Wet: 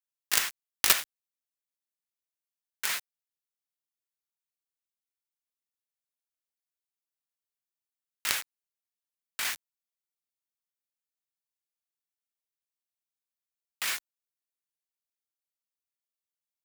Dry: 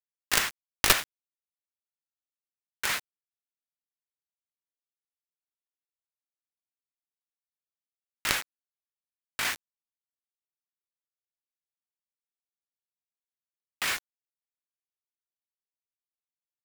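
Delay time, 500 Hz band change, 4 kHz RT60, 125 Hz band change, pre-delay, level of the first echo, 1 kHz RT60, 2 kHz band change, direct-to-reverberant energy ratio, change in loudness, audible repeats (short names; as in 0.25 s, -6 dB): none, -7.5 dB, none, -12.0 dB, none, none, none, -3.5 dB, none, -1.0 dB, none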